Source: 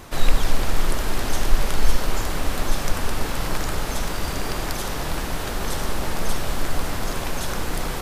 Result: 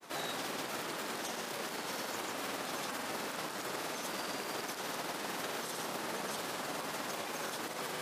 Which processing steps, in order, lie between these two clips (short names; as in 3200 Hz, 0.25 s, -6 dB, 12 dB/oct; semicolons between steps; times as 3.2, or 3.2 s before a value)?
Bessel high-pass 270 Hz, order 4; limiter -21.5 dBFS, peak gain reduction 11 dB; grains, pitch spread up and down by 0 st; gain -6 dB